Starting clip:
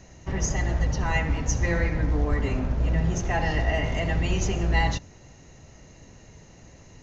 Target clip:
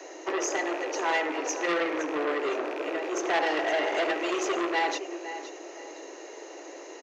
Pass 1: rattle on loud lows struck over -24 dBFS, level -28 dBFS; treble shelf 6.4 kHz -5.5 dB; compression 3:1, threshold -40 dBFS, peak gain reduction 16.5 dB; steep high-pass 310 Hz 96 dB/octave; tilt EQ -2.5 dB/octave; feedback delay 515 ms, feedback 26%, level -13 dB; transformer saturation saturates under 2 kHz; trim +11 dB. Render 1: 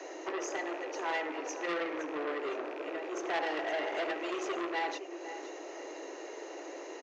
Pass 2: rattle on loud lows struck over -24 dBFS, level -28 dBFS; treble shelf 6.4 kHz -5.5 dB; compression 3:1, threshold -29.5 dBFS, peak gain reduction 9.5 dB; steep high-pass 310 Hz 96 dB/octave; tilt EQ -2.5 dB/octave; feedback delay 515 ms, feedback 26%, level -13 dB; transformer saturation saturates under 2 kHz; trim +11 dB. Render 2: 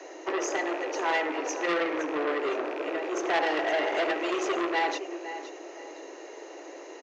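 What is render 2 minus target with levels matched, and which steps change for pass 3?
8 kHz band -4.0 dB
change: treble shelf 6.4 kHz +3.5 dB

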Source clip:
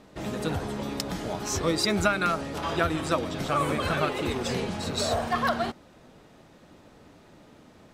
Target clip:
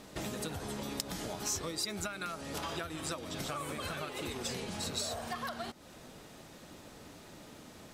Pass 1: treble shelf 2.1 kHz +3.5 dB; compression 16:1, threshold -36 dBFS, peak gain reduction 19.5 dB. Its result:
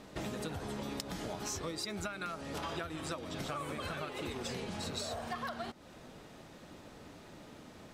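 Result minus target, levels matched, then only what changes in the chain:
8 kHz band -4.0 dB
add after compression: treble shelf 5.4 kHz +9.5 dB

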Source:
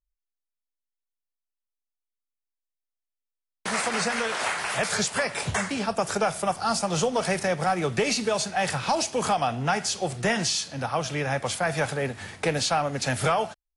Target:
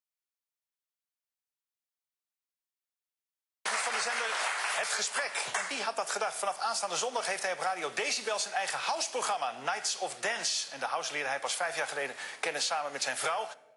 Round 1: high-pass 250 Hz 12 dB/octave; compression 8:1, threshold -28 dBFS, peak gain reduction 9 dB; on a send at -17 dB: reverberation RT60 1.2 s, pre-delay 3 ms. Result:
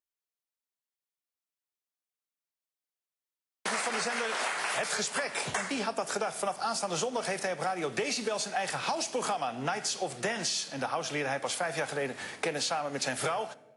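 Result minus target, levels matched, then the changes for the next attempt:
250 Hz band +11.5 dB
change: high-pass 660 Hz 12 dB/octave

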